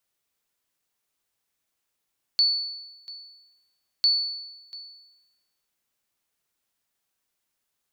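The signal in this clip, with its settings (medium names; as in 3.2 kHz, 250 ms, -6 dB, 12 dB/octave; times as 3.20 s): sonar ping 4.46 kHz, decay 1.05 s, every 1.65 s, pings 2, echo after 0.69 s, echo -19 dB -14.5 dBFS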